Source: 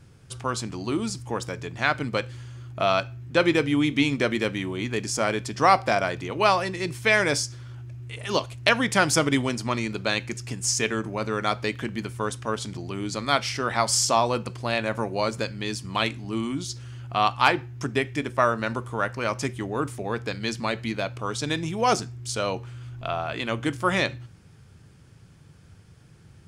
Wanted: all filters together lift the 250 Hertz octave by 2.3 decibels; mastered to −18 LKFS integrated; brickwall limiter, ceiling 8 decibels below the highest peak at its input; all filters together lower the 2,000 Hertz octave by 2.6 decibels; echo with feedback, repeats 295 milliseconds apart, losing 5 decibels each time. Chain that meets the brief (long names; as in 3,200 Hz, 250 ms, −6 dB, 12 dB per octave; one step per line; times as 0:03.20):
parametric band 250 Hz +3 dB
parametric band 2,000 Hz −3.5 dB
brickwall limiter −13 dBFS
repeating echo 295 ms, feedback 56%, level −5 dB
level +7.5 dB